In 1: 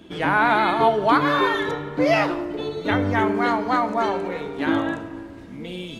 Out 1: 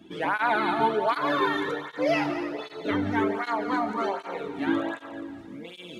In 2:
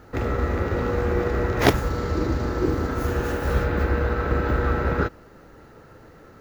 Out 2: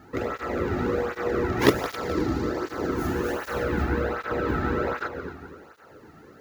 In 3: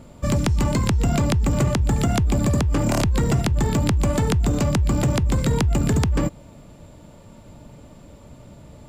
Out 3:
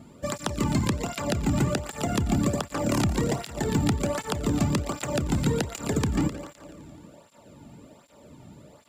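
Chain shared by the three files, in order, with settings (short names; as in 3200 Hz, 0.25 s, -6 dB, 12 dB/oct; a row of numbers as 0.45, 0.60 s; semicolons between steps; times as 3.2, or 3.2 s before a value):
multi-head echo 86 ms, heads second and third, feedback 46%, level -13 dB; tape flanging out of phase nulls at 1.3 Hz, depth 2.1 ms; match loudness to -27 LUFS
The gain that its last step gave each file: -3.0, +1.0, -0.5 dB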